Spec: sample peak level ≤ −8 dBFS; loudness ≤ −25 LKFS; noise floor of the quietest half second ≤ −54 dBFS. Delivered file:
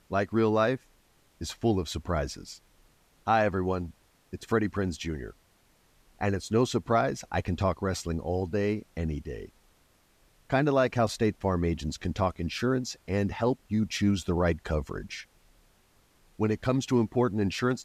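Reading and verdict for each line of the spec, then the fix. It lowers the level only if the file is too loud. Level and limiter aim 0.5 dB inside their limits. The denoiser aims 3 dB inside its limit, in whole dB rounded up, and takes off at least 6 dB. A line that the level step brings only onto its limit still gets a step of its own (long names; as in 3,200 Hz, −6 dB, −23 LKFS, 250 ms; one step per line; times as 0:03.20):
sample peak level −13.0 dBFS: in spec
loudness −29.0 LKFS: in spec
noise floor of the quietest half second −64 dBFS: in spec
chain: no processing needed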